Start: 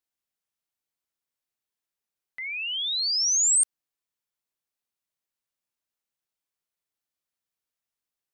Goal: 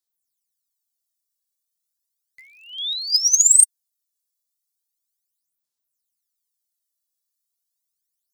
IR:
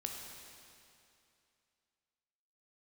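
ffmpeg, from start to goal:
-af "aphaser=in_gain=1:out_gain=1:delay=1.8:decay=0.72:speed=0.35:type=sinusoidal,aexciter=amount=8.1:drive=2.7:freq=3600,volume=0.211"

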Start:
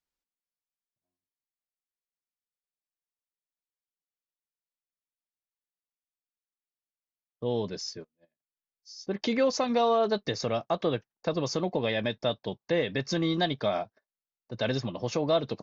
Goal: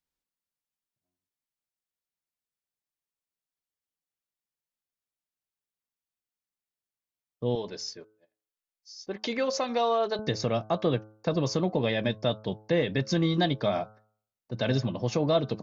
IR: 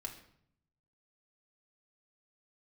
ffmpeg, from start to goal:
-af "bandreject=f=107.6:t=h:w=4,bandreject=f=215.2:t=h:w=4,bandreject=f=322.8:t=h:w=4,bandreject=f=430.4:t=h:w=4,bandreject=f=538:t=h:w=4,bandreject=f=645.6:t=h:w=4,bandreject=f=753.2:t=h:w=4,bandreject=f=860.8:t=h:w=4,bandreject=f=968.4:t=h:w=4,bandreject=f=1076:t=h:w=4,bandreject=f=1183.6:t=h:w=4,bandreject=f=1291.2:t=h:w=4,bandreject=f=1398.8:t=h:w=4,bandreject=f=1506.4:t=h:w=4,asetnsamples=n=441:p=0,asendcmd='7.55 equalizer g -9;10.19 equalizer g 6',equalizer=f=120:t=o:w=2.4:g=5"

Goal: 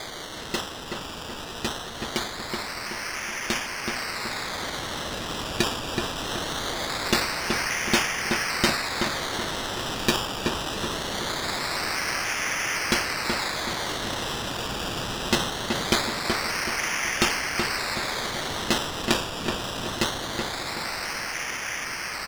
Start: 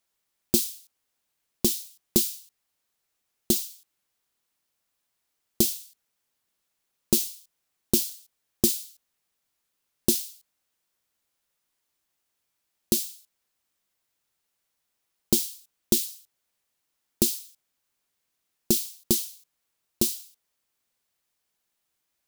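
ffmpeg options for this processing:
-filter_complex "[0:a]aeval=exprs='val(0)+0.5*0.0282*sgn(val(0))':c=same,alimiter=limit=0.316:level=0:latency=1:release=291,lowpass=8200,equalizer=f=2100:t=o:w=0.74:g=11.5,acrusher=samples=16:mix=1:aa=0.000001:lfo=1:lforange=9.6:lforate=0.22,asplit=2[s0][s1];[s1]adelay=376,lowpass=f=2500:p=1,volume=0.668,asplit=2[s2][s3];[s3]adelay=376,lowpass=f=2500:p=1,volume=0.47,asplit=2[s4][s5];[s5]adelay=376,lowpass=f=2500:p=1,volume=0.47,asplit=2[s6][s7];[s7]adelay=376,lowpass=f=2500:p=1,volume=0.47,asplit=2[s8][s9];[s9]adelay=376,lowpass=f=2500:p=1,volume=0.47,asplit=2[s10][s11];[s11]adelay=376,lowpass=f=2500:p=1,volume=0.47[s12];[s0][s2][s4][s6][s8][s10][s12]amix=inputs=7:normalize=0,dynaudnorm=f=430:g=21:m=2.11,equalizer=f=4200:t=o:w=2.5:g=13.5,volume=0.668"

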